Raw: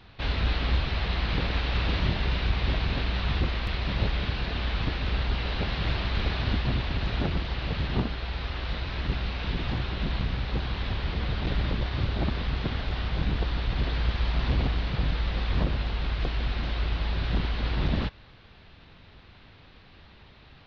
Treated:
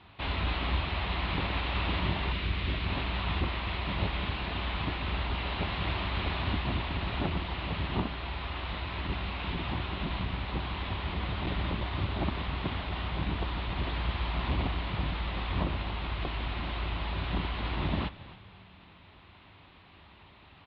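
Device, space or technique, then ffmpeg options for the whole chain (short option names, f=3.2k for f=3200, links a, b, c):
frequency-shifting delay pedal into a guitar cabinet: -filter_complex "[0:a]asettb=1/sr,asplit=3[a][b][c];[a]atrim=end=2.324[d];[b]atrim=start=2.32:end=2.86,asetpts=PTS-STARTPTS,afade=t=in:d=0.004:c=qsin,afade=t=out:st=0.536:d=0.004:c=qsin,equalizer=f=830:t=o:w=0.91:g=-9[e];[c]atrim=start=2.856[f];[d][e]acrossfade=d=0.004:c1=hsin:c2=qsin[g];[g][f]acrossfade=d=0.004:c1=qsin:c2=hsin,asplit=4[h][i][j][k];[i]adelay=274,afreqshift=-81,volume=-16.5dB[l];[j]adelay=548,afreqshift=-162,volume=-25.1dB[m];[k]adelay=822,afreqshift=-243,volume=-33.8dB[n];[h][l][m][n]amix=inputs=4:normalize=0,highpass=76,equalizer=f=130:t=q:w=4:g=-8,equalizer=f=230:t=q:w=4:g=-4,equalizer=f=480:t=q:w=4:g=-7,equalizer=f=1k:t=q:w=4:g=4,equalizer=f=1.6k:t=q:w=4:g=-5,lowpass=f=3.6k:w=0.5412,lowpass=f=3.6k:w=1.3066"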